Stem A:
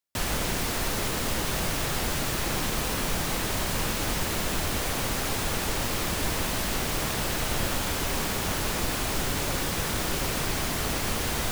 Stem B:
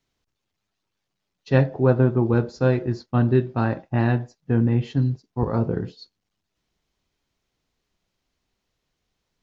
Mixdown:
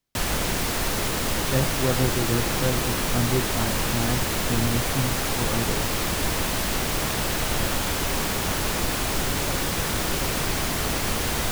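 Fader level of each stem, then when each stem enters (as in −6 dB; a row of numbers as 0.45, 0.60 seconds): +3.0, −6.5 decibels; 0.00, 0.00 seconds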